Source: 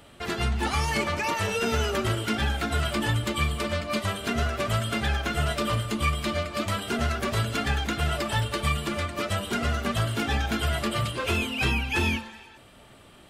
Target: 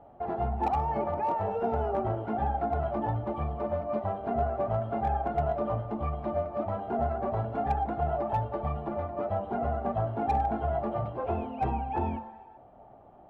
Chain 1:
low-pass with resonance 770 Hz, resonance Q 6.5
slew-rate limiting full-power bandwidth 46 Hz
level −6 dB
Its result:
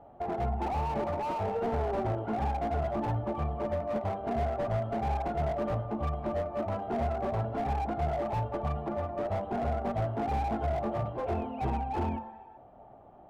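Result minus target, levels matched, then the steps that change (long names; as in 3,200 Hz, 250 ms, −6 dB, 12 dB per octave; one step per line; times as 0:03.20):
slew-rate limiting: distortion +19 dB
change: slew-rate limiting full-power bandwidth 125 Hz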